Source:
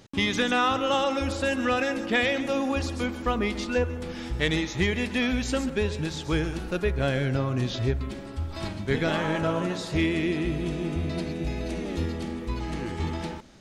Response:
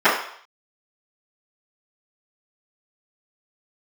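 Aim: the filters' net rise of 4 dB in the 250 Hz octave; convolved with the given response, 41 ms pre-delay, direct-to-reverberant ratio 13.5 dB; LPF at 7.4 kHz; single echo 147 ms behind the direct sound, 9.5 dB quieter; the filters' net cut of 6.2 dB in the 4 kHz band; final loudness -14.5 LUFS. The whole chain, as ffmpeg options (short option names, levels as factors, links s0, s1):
-filter_complex "[0:a]lowpass=7400,equalizer=f=250:t=o:g=5,equalizer=f=4000:t=o:g=-8,aecho=1:1:147:0.335,asplit=2[s0][s1];[1:a]atrim=start_sample=2205,adelay=41[s2];[s1][s2]afir=irnorm=-1:irlink=0,volume=0.0119[s3];[s0][s3]amix=inputs=2:normalize=0,volume=3.55"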